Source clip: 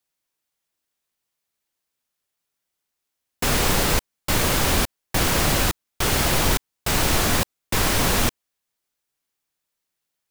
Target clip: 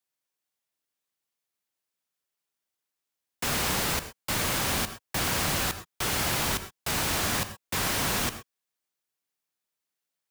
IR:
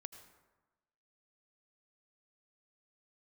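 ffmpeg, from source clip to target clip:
-filter_complex "[0:a]highpass=f=120:p=1,acrossover=split=260|660|5900[s0][s1][s2][s3];[s1]alimiter=level_in=2.11:limit=0.0631:level=0:latency=1,volume=0.473[s4];[s0][s4][s2][s3]amix=inputs=4:normalize=0[s5];[1:a]atrim=start_sample=2205,afade=t=out:st=0.18:d=0.01,atrim=end_sample=8379[s6];[s5][s6]afir=irnorm=-1:irlink=0"

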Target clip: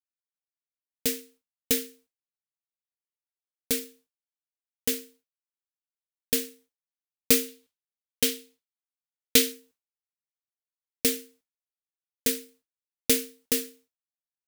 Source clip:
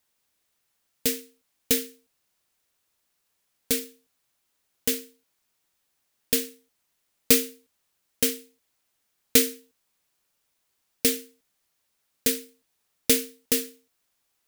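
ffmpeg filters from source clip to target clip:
-filter_complex "[0:a]agate=range=0.0224:threshold=0.00316:ratio=3:detection=peak,asettb=1/sr,asplit=3[s0][s1][s2];[s0]atrim=end=7.484[s3];[s1]atrim=start=7.48:end=9.52,asetpts=PTS-STARTPTS,afade=t=in:d=0.004:c=qsin,afade=t=out:st=2.036:d=0.004:c=qsin,equalizer=f=3500:w=1.2:g=5.5[s4];[s2]atrim=start=9.516[s5];[s3][s4]acrossfade=d=0.004:c1=hsin:c2=qsin[s6];[s6][s5]acrossfade=d=0.004:c1=qsin:c2=hsin,volume=0.794"

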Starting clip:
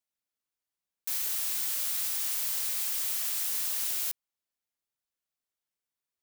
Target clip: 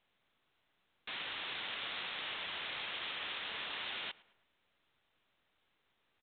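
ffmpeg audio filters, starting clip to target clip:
-filter_complex "[0:a]asplit=2[s0][s1];[s1]adelay=108,lowpass=f=2600:p=1,volume=0.0891,asplit=2[s2][s3];[s3]adelay=108,lowpass=f=2600:p=1,volume=0.46,asplit=2[s4][s5];[s5]adelay=108,lowpass=f=2600:p=1,volume=0.46[s6];[s0][s2][s4][s6]amix=inputs=4:normalize=0,volume=1.68" -ar 8000 -c:a pcm_mulaw

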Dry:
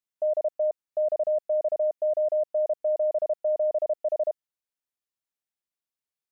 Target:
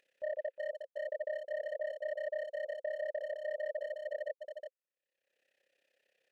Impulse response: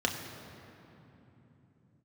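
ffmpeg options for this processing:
-filter_complex "[0:a]tremolo=f=33:d=0.857,volume=18.8,asoftclip=hard,volume=0.0531,asplit=3[s0][s1][s2];[s0]bandpass=f=530:t=q:w=8,volume=1[s3];[s1]bandpass=f=1840:t=q:w=8,volume=0.501[s4];[s2]bandpass=f=2480:t=q:w=8,volume=0.355[s5];[s3][s4][s5]amix=inputs=3:normalize=0,acompressor=mode=upward:threshold=0.00224:ratio=2.5,asplit=2[s6][s7];[s7]adelay=360,highpass=300,lowpass=3400,asoftclip=type=hard:threshold=0.0178,volume=0.501[s8];[s6][s8]amix=inputs=2:normalize=0,volume=1.26"

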